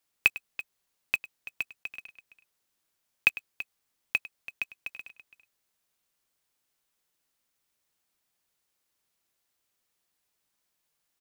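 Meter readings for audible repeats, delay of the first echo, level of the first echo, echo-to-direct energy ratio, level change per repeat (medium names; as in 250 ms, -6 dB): 2, 101 ms, -18.0 dB, -13.5 dB, no regular repeats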